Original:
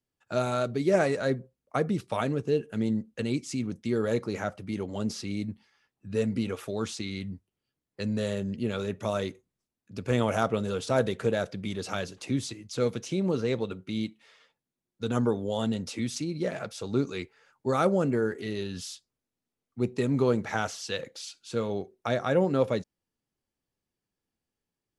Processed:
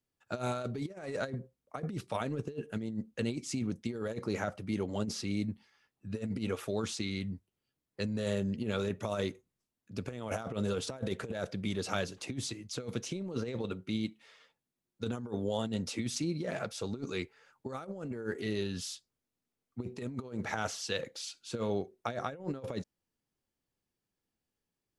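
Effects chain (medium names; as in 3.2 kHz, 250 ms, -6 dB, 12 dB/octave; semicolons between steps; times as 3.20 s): compressor with a negative ratio -30 dBFS, ratio -0.5; trim -4 dB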